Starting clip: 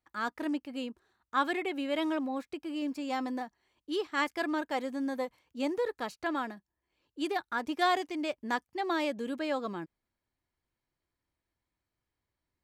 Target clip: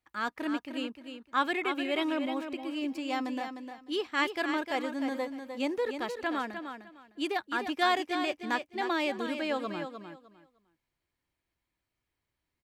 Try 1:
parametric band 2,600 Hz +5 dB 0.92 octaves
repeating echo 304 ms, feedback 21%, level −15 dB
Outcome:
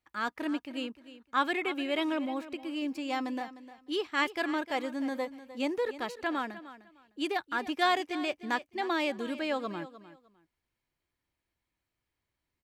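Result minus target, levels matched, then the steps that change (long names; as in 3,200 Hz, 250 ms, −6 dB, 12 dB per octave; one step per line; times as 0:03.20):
echo-to-direct −7 dB
change: repeating echo 304 ms, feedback 21%, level −8 dB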